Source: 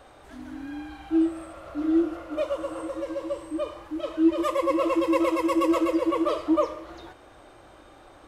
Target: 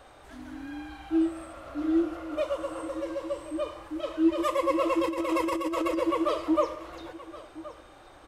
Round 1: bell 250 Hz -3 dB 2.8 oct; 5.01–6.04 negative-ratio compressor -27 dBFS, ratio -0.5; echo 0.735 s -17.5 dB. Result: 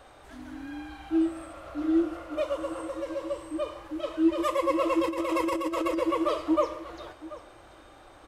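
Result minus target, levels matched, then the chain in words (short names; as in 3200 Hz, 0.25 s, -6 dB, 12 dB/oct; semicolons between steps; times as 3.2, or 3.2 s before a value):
echo 0.336 s early
bell 250 Hz -3 dB 2.8 oct; 5.01–6.04 negative-ratio compressor -27 dBFS, ratio -0.5; echo 1.071 s -17.5 dB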